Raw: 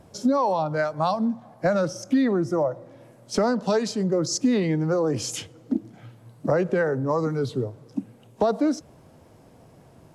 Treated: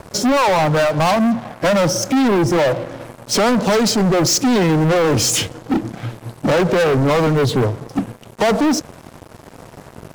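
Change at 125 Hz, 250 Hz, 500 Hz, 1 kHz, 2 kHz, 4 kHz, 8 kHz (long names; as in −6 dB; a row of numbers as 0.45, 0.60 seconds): +10.0, +7.5, +7.5, +9.0, +11.5, +14.5, +13.5 decibels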